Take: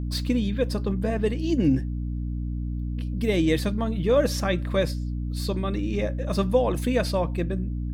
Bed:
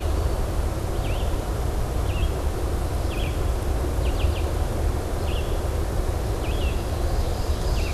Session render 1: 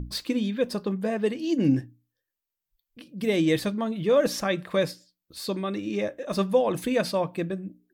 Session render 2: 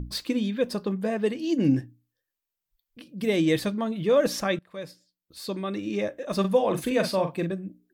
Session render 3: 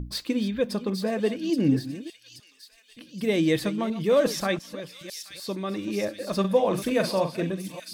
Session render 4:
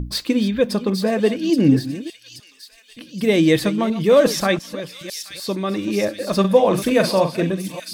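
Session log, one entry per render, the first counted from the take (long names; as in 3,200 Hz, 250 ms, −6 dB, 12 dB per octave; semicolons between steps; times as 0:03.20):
mains-hum notches 60/120/180/240/300 Hz
0:04.59–0:05.83: fade in, from −23 dB; 0:06.40–0:07.53: double-tracking delay 42 ms −7 dB
delay that plays each chunk backwards 300 ms, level −13.5 dB; delay with a high-pass on its return 826 ms, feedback 55%, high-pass 3,800 Hz, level −4.5 dB
level +7.5 dB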